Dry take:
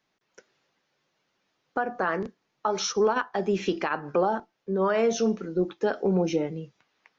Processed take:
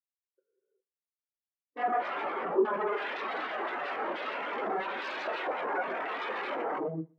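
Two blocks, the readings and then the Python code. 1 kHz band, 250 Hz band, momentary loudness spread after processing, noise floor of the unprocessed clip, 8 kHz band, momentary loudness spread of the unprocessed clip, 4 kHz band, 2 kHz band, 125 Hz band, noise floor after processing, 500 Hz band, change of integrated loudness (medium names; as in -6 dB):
-1.5 dB, -11.0 dB, 6 LU, -77 dBFS, no reading, 10 LU, -6.0 dB, -0.5 dB, under -10 dB, under -85 dBFS, -7.5 dB, -6.0 dB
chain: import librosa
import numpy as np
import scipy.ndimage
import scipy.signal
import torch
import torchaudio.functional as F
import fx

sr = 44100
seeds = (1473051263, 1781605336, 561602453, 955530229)

p1 = scipy.signal.sosfilt(scipy.signal.cheby1(5, 1.0, 2200.0, 'lowpass', fs=sr, output='sos'), x)
p2 = fx.low_shelf(p1, sr, hz=490.0, db=11.5)
p3 = fx.rev_gated(p2, sr, seeds[0], gate_ms=440, shape='flat', drr_db=-4.5)
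p4 = fx.sample_hold(p3, sr, seeds[1], rate_hz=1500.0, jitter_pct=0)
p5 = p3 + (p4 * 10.0 ** (-10.5 / 20.0))
p6 = 10.0 ** (-21.5 / 20.0) * (np.abs((p5 / 10.0 ** (-21.5 / 20.0) + 3.0) % 4.0 - 2.0) - 1.0)
p7 = scipy.signal.sosfilt(scipy.signal.butter(2, 290.0, 'highpass', fs=sr, output='sos'), p6)
p8 = p7 + fx.echo_feedback(p7, sr, ms=122, feedback_pct=45, wet_db=-12.0, dry=0)
y = fx.spectral_expand(p8, sr, expansion=2.5)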